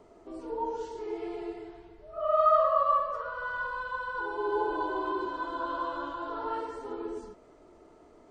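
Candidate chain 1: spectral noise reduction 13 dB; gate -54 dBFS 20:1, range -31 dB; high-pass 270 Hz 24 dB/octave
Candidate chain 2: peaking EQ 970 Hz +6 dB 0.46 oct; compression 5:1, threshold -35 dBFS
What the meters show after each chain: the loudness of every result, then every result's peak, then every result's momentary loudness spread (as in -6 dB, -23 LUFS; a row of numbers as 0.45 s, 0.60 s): -31.0 LUFS, -38.0 LUFS; -12.5 dBFS, -25.5 dBFS; 16 LU, 14 LU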